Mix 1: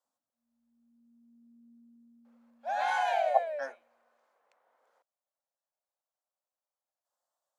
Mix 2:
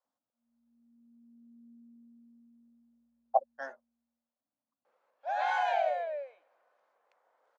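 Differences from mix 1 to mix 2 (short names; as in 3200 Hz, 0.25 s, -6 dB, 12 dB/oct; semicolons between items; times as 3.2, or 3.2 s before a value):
first sound +3.0 dB; second sound: entry +2.60 s; master: add air absorption 100 m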